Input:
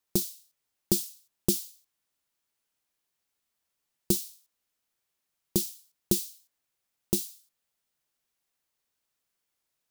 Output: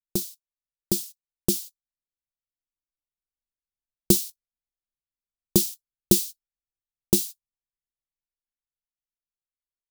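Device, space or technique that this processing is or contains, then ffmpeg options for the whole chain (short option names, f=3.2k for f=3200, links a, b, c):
voice memo with heavy noise removal: -af "anlmdn=0.01,dynaudnorm=f=360:g=11:m=11.5dB"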